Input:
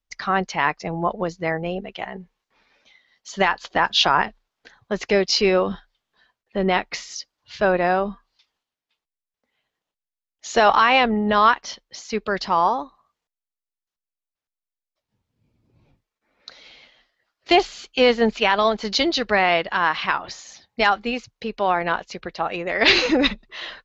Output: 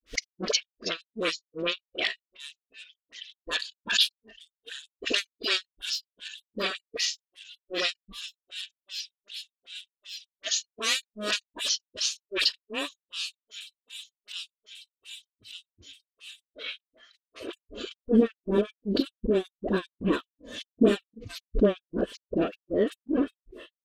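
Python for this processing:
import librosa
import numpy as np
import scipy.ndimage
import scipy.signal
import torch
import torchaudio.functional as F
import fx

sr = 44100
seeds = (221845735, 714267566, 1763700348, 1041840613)

p1 = fx.low_shelf(x, sr, hz=320.0, db=10.0)
p2 = fx.fold_sine(p1, sr, drive_db=17, ceiling_db=-1.5)
p3 = p1 + F.gain(torch.from_numpy(p2), -4.0).numpy()
p4 = fx.dynamic_eq(p3, sr, hz=1500.0, q=1.4, threshold_db=-25.0, ratio=4.0, max_db=-5)
p5 = fx.fixed_phaser(p4, sr, hz=350.0, stages=4)
p6 = p5 + fx.echo_wet_highpass(p5, sr, ms=593, feedback_pct=82, hz=2900.0, wet_db=-14.5, dry=0)
p7 = fx.granulator(p6, sr, seeds[0], grain_ms=206.0, per_s=2.6, spray_ms=31.0, spread_st=0)
p8 = fx.filter_sweep_bandpass(p7, sr, from_hz=3200.0, to_hz=300.0, start_s=16.12, end_s=18.23, q=0.81)
p9 = fx.rider(p8, sr, range_db=4, speed_s=0.5)
p10 = fx.dispersion(p9, sr, late='highs', ms=47.0, hz=940.0)
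p11 = fx.noise_reduce_blind(p10, sr, reduce_db=13)
p12 = fx.pre_swell(p11, sr, db_per_s=79.0)
y = F.gain(torch.from_numpy(p12), -4.5).numpy()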